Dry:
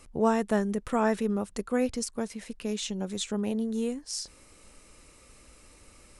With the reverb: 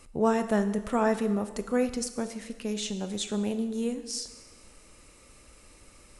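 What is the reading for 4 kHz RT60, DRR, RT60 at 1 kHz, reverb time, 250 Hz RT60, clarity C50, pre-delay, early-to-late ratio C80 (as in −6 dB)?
1.2 s, 9.5 dB, 1.3 s, 1.3 s, 1.3 s, 11.5 dB, 7 ms, 13.0 dB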